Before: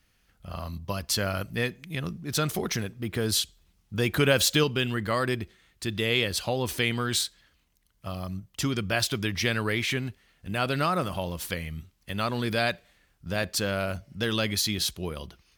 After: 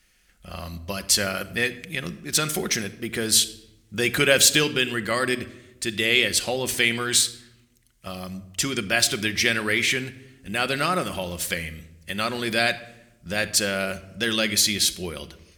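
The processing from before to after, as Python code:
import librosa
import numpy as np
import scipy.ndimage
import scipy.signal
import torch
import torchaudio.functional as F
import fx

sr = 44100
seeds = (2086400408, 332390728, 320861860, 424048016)

y = fx.graphic_eq(x, sr, hz=(125, 1000, 2000, 8000), db=(-9, -5, 5, 8))
y = fx.room_shoebox(y, sr, seeds[0], volume_m3=3500.0, walls='furnished', distance_m=0.95)
y = F.gain(torch.from_numpy(y), 3.0).numpy()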